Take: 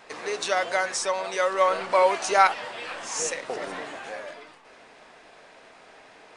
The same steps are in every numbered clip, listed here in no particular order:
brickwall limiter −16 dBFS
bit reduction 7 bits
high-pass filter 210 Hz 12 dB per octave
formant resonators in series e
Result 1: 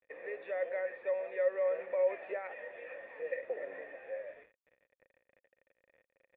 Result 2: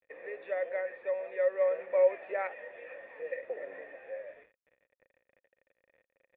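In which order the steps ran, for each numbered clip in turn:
high-pass filter, then brickwall limiter, then bit reduction, then formant resonators in series
high-pass filter, then bit reduction, then formant resonators in series, then brickwall limiter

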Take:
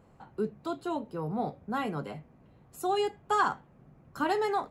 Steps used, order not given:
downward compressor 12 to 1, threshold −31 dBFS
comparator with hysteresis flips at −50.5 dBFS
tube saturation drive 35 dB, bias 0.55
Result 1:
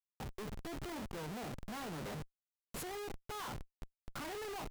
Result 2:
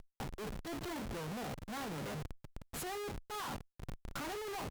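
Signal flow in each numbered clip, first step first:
downward compressor, then tube saturation, then comparator with hysteresis
downward compressor, then comparator with hysteresis, then tube saturation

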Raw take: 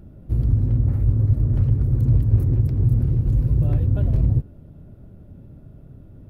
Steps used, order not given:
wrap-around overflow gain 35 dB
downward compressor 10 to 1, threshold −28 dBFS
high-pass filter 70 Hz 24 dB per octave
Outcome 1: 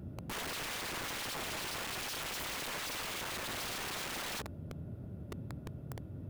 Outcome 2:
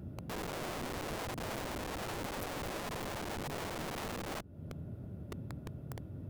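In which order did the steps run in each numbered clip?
high-pass filter, then wrap-around overflow, then downward compressor
downward compressor, then high-pass filter, then wrap-around overflow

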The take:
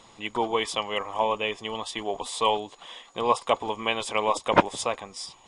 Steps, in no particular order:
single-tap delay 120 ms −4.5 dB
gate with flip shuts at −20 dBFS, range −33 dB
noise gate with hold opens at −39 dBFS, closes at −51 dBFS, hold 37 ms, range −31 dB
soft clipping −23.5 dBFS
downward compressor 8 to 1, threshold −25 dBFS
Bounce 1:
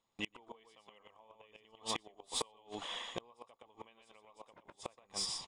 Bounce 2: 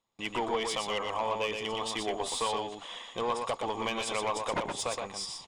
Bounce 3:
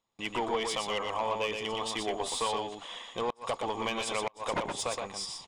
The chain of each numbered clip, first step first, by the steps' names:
noise gate with hold, then single-tap delay, then downward compressor, then gate with flip, then soft clipping
downward compressor, then soft clipping, then gate with flip, then single-tap delay, then noise gate with hold
downward compressor, then soft clipping, then single-tap delay, then noise gate with hold, then gate with flip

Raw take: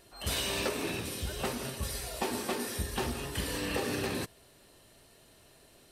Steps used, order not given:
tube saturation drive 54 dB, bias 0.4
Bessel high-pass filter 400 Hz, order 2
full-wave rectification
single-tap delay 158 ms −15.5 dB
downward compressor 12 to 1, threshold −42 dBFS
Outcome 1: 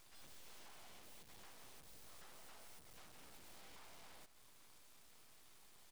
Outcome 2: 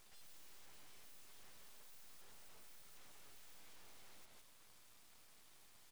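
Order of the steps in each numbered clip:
downward compressor, then tube saturation, then Bessel high-pass filter, then full-wave rectification, then single-tap delay
single-tap delay, then downward compressor, then Bessel high-pass filter, then tube saturation, then full-wave rectification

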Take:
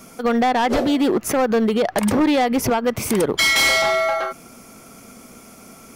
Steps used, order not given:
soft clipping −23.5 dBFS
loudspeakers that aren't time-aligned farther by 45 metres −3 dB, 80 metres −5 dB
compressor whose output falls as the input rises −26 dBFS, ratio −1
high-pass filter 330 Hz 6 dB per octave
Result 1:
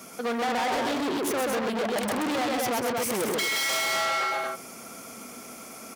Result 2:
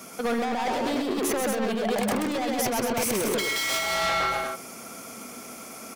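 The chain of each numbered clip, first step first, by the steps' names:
loudspeakers that aren't time-aligned, then soft clipping, then high-pass filter, then compressor whose output falls as the input rises
high-pass filter, then soft clipping, then loudspeakers that aren't time-aligned, then compressor whose output falls as the input rises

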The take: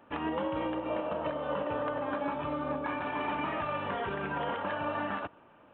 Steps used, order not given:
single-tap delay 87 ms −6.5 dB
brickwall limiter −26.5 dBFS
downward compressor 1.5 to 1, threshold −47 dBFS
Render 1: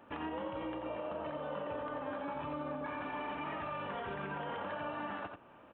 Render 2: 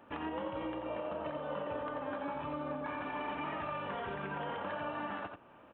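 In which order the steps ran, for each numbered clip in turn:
brickwall limiter, then single-tap delay, then downward compressor
single-tap delay, then downward compressor, then brickwall limiter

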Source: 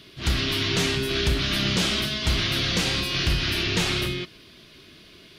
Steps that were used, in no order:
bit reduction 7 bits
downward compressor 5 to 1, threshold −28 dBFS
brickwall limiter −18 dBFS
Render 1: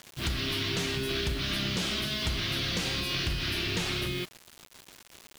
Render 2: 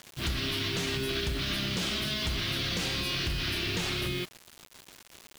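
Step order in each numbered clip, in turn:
bit reduction, then downward compressor, then brickwall limiter
brickwall limiter, then bit reduction, then downward compressor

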